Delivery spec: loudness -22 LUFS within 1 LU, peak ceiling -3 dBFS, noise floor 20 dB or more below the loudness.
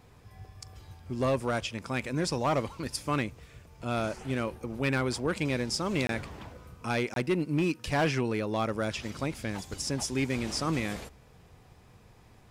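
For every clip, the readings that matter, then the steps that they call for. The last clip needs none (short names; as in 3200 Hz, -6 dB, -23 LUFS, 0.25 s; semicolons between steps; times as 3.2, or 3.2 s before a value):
clipped 0.7%; flat tops at -21.0 dBFS; dropouts 2; longest dropout 22 ms; loudness -31.0 LUFS; peak -21.0 dBFS; loudness target -22.0 LUFS
-> clip repair -21 dBFS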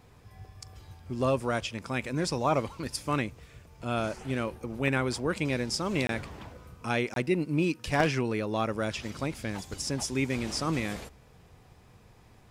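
clipped 0.0%; dropouts 2; longest dropout 22 ms
-> interpolate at 6.07/7.14, 22 ms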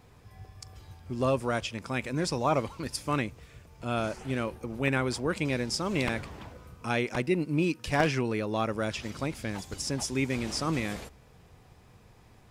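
dropouts 0; loudness -30.5 LUFS; peak -12.0 dBFS; loudness target -22.0 LUFS
-> gain +8.5 dB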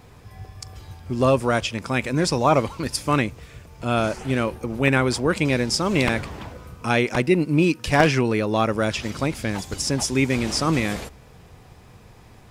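loudness -22.0 LUFS; peak -3.5 dBFS; noise floor -48 dBFS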